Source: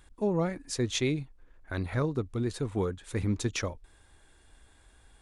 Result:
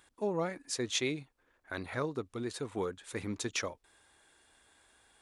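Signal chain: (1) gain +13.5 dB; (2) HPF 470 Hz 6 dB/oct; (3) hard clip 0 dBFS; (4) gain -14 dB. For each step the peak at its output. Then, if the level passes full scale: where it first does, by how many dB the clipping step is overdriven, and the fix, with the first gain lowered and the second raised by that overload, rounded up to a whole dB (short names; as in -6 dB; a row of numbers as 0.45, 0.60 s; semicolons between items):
-4.0, -4.5, -4.5, -18.5 dBFS; no overload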